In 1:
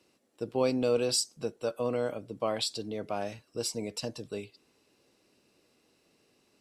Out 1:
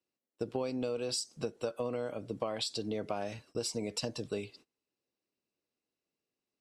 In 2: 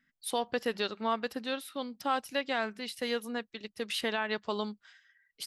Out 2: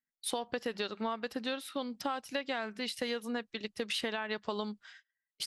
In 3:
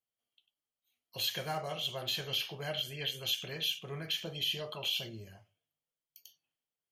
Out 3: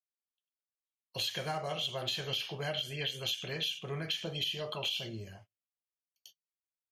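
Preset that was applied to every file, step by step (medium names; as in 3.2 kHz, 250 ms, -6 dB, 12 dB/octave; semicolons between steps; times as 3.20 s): low-pass 9.8 kHz 12 dB/octave; gate -59 dBFS, range -27 dB; compression 12:1, threshold -35 dBFS; trim +4 dB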